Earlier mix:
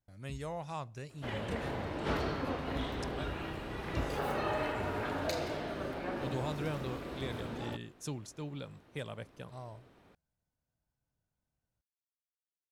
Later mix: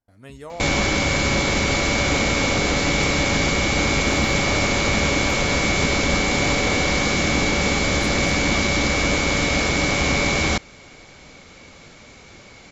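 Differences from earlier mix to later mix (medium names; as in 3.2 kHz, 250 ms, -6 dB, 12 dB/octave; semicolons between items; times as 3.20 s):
first sound: unmuted; second sound -3.0 dB; reverb: on, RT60 0.40 s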